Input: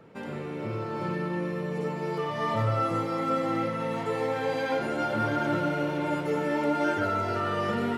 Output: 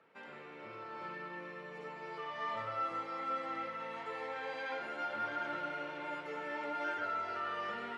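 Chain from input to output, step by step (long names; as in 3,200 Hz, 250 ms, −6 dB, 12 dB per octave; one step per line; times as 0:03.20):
low-pass filter 1,900 Hz 12 dB per octave
first difference
level +8 dB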